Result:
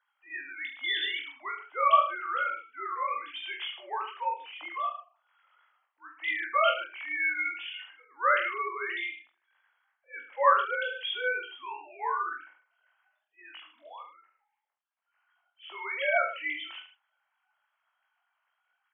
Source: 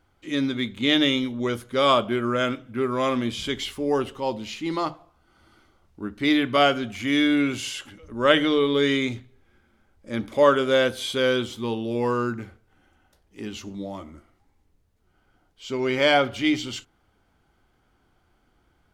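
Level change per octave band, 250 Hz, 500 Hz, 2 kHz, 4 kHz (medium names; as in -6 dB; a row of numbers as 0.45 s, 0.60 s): -32.5 dB, -12.5 dB, -2.5 dB, -10.0 dB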